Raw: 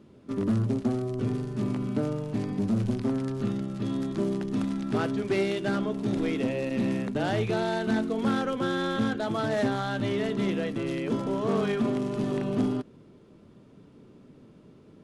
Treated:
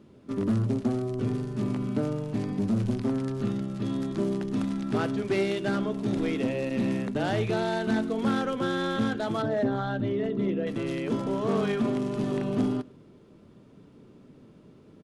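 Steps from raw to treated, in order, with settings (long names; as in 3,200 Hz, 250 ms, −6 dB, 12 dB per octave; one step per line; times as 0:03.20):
0:09.42–0:10.67: spectral envelope exaggerated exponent 1.5
on a send: single-tap delay 106 ms −23.5 dB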